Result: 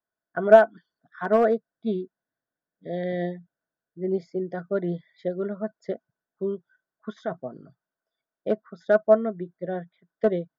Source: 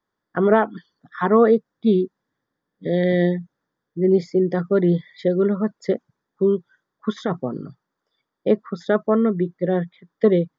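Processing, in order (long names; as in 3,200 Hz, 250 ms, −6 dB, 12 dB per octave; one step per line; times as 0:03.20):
hard clipping −7.5 dBFS, distortion −26 dB
hollow resonant body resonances 660/1,500 Hz, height 15 dB, ringing for 45 ms
expander for the loud parts 1.5 to 1, over −23 dBFS
level −4.5 dB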